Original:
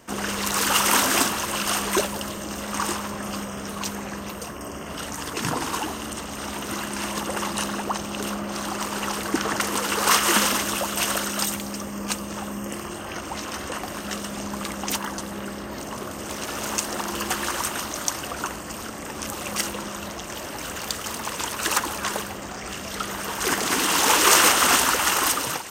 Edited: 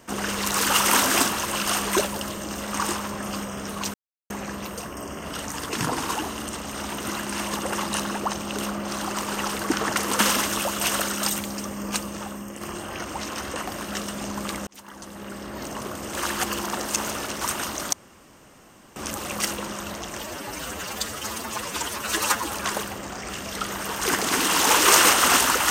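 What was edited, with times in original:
3.94 s: insert silence 0.36 s
9.83–10.35 s: delete
12.17–12.77 s: fade out, to -7 dB
14.83–15.81 s: fade in
16.33–17.57 s: reverse
18.09–19.12 s: room tone
20.37–21.91 s: stretch 1.5×

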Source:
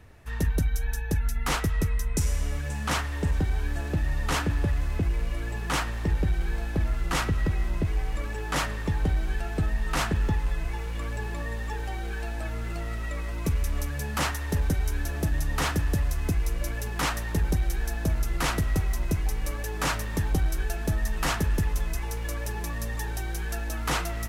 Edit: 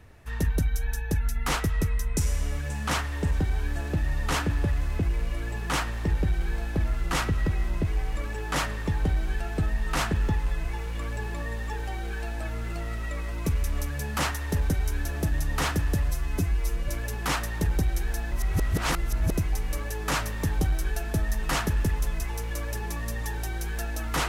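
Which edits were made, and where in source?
16.09–16.62 s: stretch 1.5×
18.05–19.04 s: reverse

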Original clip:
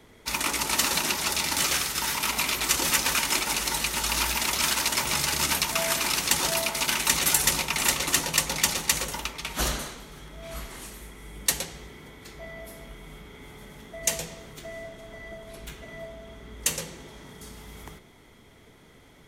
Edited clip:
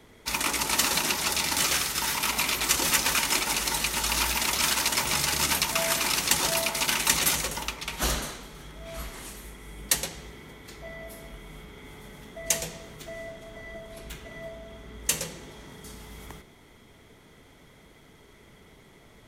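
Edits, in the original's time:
7.34–8.91 s: delete

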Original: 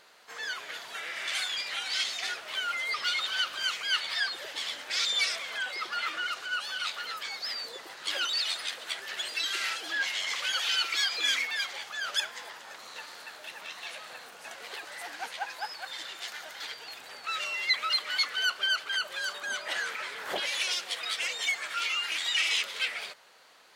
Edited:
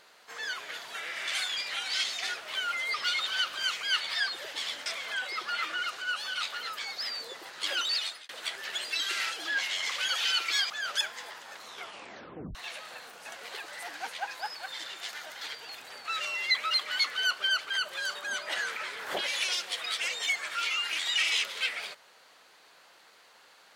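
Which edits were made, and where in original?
4.86–5.30 s: delete
8.40–8.73 s: fade out
11.14–11.89 s: delete
12.83 s: tape stop 0.91 s

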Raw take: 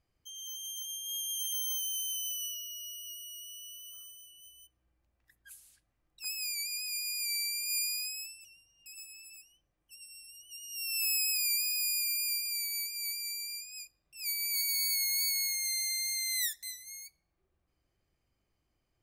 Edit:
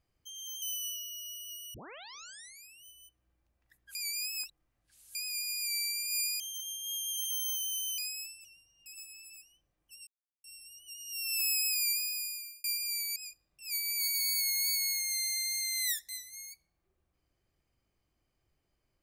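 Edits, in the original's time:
0.62–2.20 s: move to 7.98 s
3.32 s: tape start 1.10 s
5.53–6.73 s: reverse
10.07 s: insert silence 0.37 s
11.51–12.27 s: fade out
12.79–13.70 s: delete

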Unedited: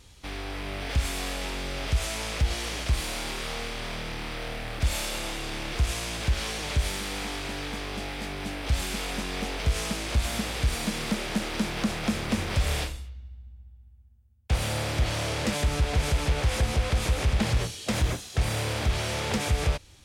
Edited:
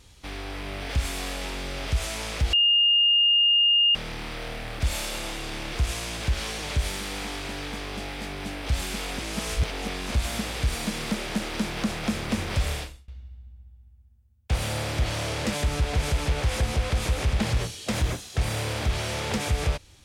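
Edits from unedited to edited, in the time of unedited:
2.53–3.95 s: bleep 2.83 kHz -16.5 dBFS
9.19–10.11 s: reverse
12.62–13.08 s: fade out, to -23.5 dB

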